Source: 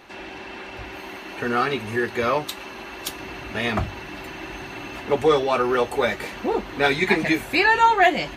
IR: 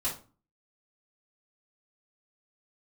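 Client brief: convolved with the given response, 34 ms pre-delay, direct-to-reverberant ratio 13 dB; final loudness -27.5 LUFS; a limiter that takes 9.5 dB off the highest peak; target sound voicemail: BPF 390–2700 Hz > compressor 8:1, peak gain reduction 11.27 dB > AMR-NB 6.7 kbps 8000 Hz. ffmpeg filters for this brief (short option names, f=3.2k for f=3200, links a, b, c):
-filter_complex "[0:a]alimiter=limit=-14dB:level=0:latency=1,asplit=2[a][b];[1:a]atrim=start_sample=2205,adelay=34[c];[b][c]afir=irnorm=-1:irlink=0,volume=-18dB[d];[a][d]amix=inputs=2:normalize=0,highpass=390,lowpass=2.7k,acompressor=threshold=-29dB:ratio=8,volume=9dB" -ar 8000 -c:a libopencore_amrnb -b:a 6700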